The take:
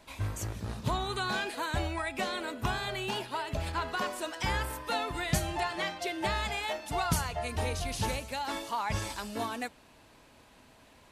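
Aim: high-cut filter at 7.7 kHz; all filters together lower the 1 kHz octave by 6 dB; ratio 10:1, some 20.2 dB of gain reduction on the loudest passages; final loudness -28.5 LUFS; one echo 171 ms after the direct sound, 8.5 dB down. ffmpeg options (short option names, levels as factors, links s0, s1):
-af "lowpass=7700,equalizer=f=1000:t=o:g=-8,acompressor=threshold=0.00501:ratio=10,aecho=1:1:171:0.376,volume=10.6"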